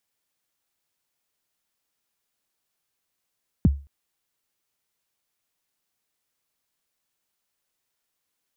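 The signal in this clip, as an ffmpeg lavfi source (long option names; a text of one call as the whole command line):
ffmpeg -f lavfi -i "aevalsrc='0.316*pow(10,-3*t/0.32)*sin(2*PI*(270*0.026/log(70/270)*(exp(log(70/270)*min(t,0.026)/0.026)-1)+70*max(t-0.026,0)))':duration=0.22:sample_rate=44100" out.wav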